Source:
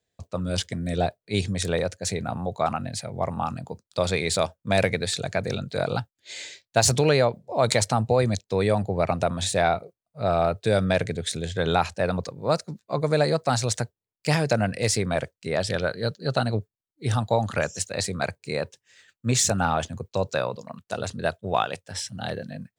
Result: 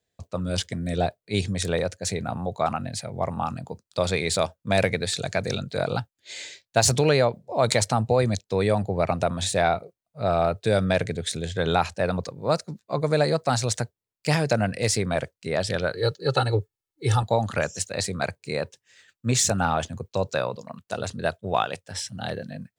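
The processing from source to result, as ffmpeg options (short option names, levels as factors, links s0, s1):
-filter_complex "[0:a]asettb=1/sr,asplit=3[s0][s1][s2];[s0]atrim=end=5.184[s3];[s1]atrim=start=5.18:end=5.63,asetpts=PTS-STARTPTS,afade=t=in:d=0.004:c=qsin,afade=t=out:st=0.446:d=0.004:c=qsin,equalizer=f=6200:t=o:w=2:g=5.5[s4];[s2]atrim=start=5.626[s5];[s3][s4]acrossfade=d=0.004:c1=hsin:c2=qsin[s6];[s6][s5]acrossfade=d=0.004:c1=qsin:c2=hsin,asettb=1/sr,asplit=3[s7][s8][s9];[s7]atrim=end=15.944[s10];[s8]atrim=start=15.94:end=17.23,asetpts=PTS-STARTPTS,afade=t=in:d=0.004:c=qsin,afade=t=out:st=1.286:d=0.004:c=qsin,aecho=1:1:2.3:0.99,atrim=end_sample=56889[s11];[s9]atrim=start=17.226[s12];[s10][s11]acrossfade=d=0.004:c1=hsin:c2=qsin[s13];[s13][s12]acrossfade=d=0.004:c1=qsin:c2=hsin"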